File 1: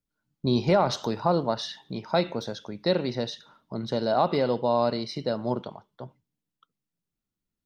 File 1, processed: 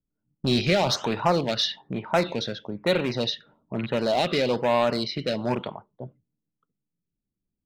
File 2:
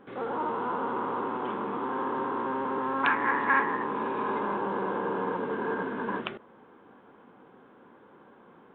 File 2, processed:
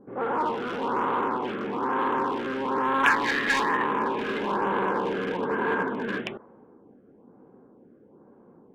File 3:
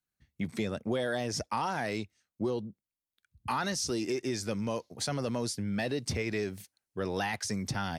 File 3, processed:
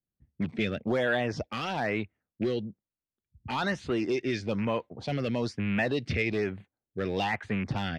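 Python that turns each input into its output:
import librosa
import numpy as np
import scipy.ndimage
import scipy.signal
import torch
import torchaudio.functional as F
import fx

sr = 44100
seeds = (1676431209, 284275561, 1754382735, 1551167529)

p1 = fx.rattle_buzz(x, sr, strikes_db=-31.0, level_db=-32.0)
p2 = fx.env_lowpass(p1, sr, base_hz=420.0, full_db=-22.5)
p3 = 10.0 ** (-26.0 / 20.0) * (np.abs((p2 / 10.0 ** (-26.0 / 20.0) + 3.0) % 4.0 - 2.0) - 1.0)
p4 = p2 + F.gain(torch.from_numpy(p3), -6.0).numpy()
p5 = fx.filter_lfo_notch(p4, sr, shape='sine', hz=1.1, low_hz=890.0, high_hz=5600.0, q=0.92)
y = fx.peak_eq(p5, sr, hz=2900.0, db=9.0, octaves=2.2)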